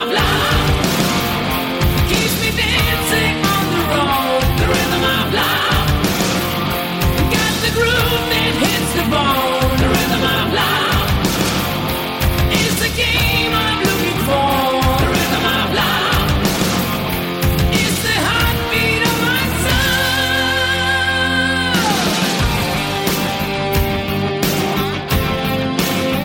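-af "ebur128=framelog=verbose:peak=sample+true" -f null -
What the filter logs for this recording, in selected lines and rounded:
Integrated loudness:
  I:         -15.4 LUFS
  Threshold: -25.4 LUFS
Loudness range:
  LRA:         1.3 LU
  Threshold: -35.3 LUFS
  LRA low:   -16.0 LUFS
  LRA high:  -14.6 LUFS
Sample peak:
  Peak:       -4.5 dBFS
True peak:
  Peak:       -4.1 dBFS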